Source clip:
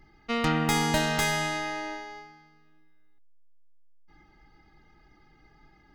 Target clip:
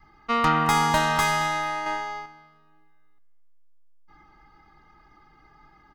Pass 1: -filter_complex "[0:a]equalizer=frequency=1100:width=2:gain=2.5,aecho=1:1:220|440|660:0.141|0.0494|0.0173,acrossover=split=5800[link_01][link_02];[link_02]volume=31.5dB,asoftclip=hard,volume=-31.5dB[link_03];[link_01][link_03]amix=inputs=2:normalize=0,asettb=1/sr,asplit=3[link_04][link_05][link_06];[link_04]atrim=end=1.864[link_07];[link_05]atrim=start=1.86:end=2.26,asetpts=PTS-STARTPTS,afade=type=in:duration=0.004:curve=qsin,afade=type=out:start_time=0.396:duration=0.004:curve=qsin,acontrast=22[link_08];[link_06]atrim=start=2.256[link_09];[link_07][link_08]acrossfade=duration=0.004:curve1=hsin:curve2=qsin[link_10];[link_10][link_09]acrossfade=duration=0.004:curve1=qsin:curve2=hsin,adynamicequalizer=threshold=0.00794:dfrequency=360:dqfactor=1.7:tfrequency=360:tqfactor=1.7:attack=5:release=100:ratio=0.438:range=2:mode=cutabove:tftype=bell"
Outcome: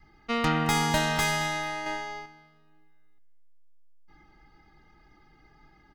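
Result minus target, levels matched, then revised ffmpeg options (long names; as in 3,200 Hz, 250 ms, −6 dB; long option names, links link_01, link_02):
gain into a clipping stage and back: distortion +14 dB; 1,000 Hz band −3.0 dB
-filter_complex "[0:a]equalizer=frequency=1100:width=2:gain=14,aecho=1:1:220|440|660:0.141|0.0494|0.0173,acrossover=split=5800[link_01][link_02];[link_02]volume=24dB,asoftclip=hard,volume=-24dB[link_03];[link_01][link_03]amix=inputs=2:normalize=0,asettb=1/sr,asplit=3[link_04][link_05][link_06];[link_04]atrim=end=1.864[link_07];[link_05]atrim=start=1.86:end=2.26,asetpts=PTS-STARTPTS,afade=type=in:duration=0.004:curve=qsin,afade=type=out:start_time=0.396:duration=0.004:curve=qsin,acontrast=22[link_08];[link_06]atrim=start=2.256[link_09];[link_07][link_08]acrossfade=duration=0.004:curve1=hsin:curve2=qsin[link_10];[link_10][link_09]acrossfade=duration=0.004:curve1=qsin:curve2=hsin,adynamicequalizer=threshold=0.00794:dfrequency=360:dqfactor=1.7:tfrequency=360:tqfactor=1.7:attack=5:release=100:ratio=0.438:range=2:mode=cutabove:tftype=bell"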